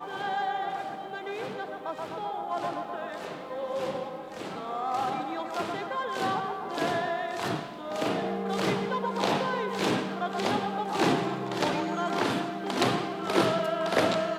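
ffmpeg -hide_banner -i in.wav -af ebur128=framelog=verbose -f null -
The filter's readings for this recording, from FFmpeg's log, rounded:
Integrated loudness:
  I:         -30.1 LUFS
  Threshold: -40.1 LUFS
Loudness range:
  LRA:         6.7 LU
  Threshold: -50.3 LUFS
  LRA low:   -34.6 LUFS
  LRA high:  -27.9 LUFS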